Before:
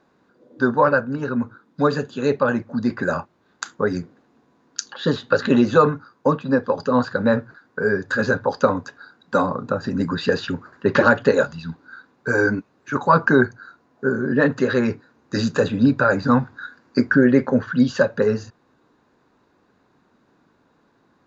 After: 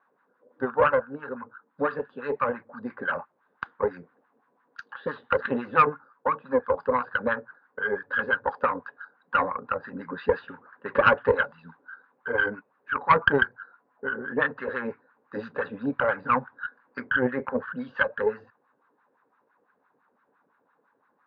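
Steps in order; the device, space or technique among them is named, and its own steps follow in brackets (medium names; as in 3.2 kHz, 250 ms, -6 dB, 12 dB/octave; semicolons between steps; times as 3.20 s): wah-wah guitar rig (wah-wah 5.9 Hz 480–1400 Hz, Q 2.4; valve stage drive 12 dB, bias 0.65; cabinet simulation 79–3700 Hz, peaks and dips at 350 Hz -8 dB, 660 Hz -7 dB, 1.7 kHz +3 dB); trim +5 dB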